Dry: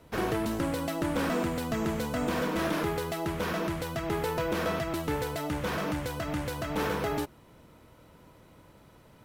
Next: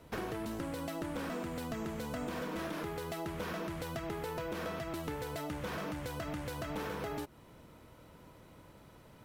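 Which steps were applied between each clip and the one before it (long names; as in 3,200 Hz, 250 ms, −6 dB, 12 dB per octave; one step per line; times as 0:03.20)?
downward compressor, threshold −35 dBFS, peak gain reduction 10 dB
level −1 dB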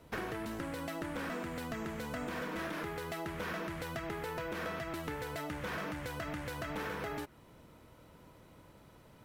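dynamic equaliser 1,800 Hz, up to +6 dB, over −57 dBFS, Q 1.2
level −1.5 dB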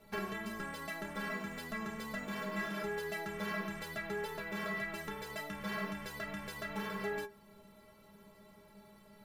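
stiff-string resonator 200 Hz, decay 0.23 s, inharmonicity 0.008
level +11.5 dB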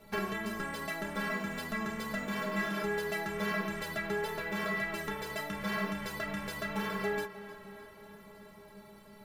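tape delay 309 ms, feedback 71%, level −14 dB, low-pass 5,500 Hz
level +4.5 dB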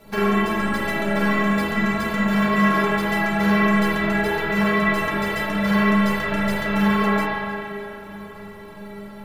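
convolution reverb RT60 1.8 s, pre-delay 39 ms, DRR −6.5 dB
level +7 dB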